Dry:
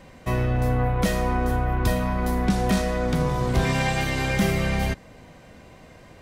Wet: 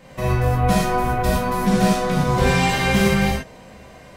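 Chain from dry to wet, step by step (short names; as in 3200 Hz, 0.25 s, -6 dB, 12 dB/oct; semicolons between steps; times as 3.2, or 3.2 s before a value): low shelf 71 Hz -6 dB; time stretch by phase-locked vocoder 0.67×; non-linear reverb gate 0.14 s flat, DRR -6 dB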